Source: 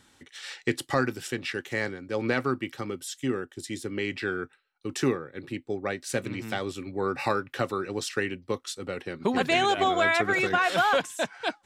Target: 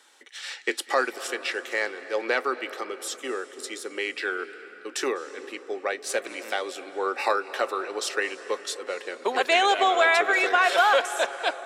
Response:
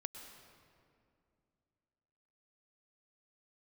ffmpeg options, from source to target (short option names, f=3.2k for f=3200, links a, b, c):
-filter_complex "[0:a]highpass=f=420:w=0.5412,highpass=f=420:w=1.3066,asplit=2[a][b];[1:a]atrim=start_sample=2205,asetrate=22491,aresample=44100[c];[b][c]afir=irnorm=-1:irlink=0,volume=-5.5dB[d];[a][d]amix=inputs=2:normalize=0"